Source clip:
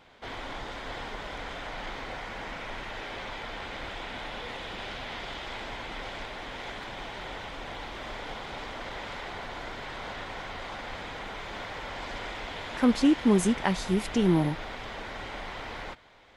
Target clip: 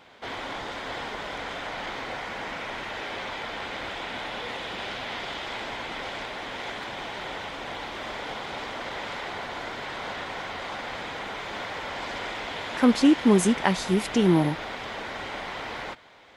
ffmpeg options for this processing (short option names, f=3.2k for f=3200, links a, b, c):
-af "highpass=f=150:p=1,volume=4.5dB"